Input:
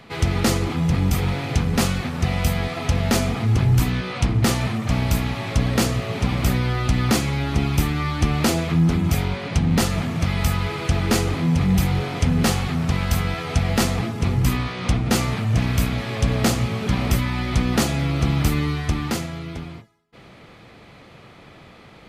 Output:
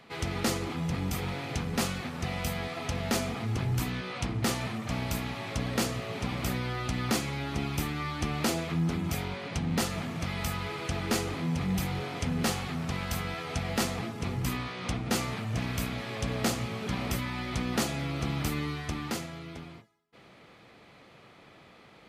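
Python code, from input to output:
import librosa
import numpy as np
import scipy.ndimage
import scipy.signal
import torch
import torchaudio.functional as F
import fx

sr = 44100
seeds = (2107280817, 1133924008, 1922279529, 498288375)

y = fx.low_shelf(x, sr, hz=120.0, db=-10.5)
y = F.gain(torch.from_numpy(y), -7.5).numpy()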